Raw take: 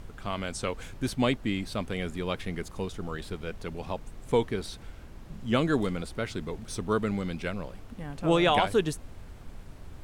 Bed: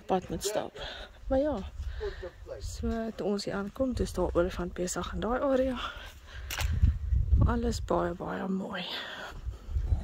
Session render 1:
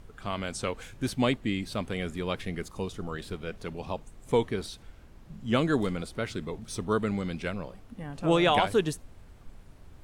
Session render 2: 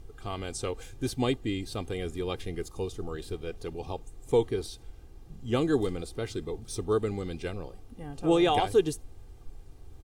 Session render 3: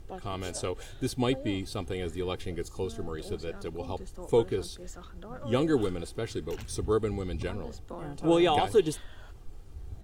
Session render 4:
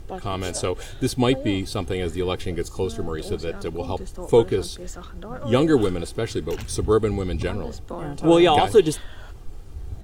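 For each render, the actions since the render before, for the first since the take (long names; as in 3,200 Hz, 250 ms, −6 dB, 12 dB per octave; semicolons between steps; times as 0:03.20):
noise reduction from a noise print 6 dB
parametric band 1,700 Hz −8.5 dB 1.8 octaves; comb filter 2.5 ms, depth 59%
mix in bed −14 dB
level +8 dB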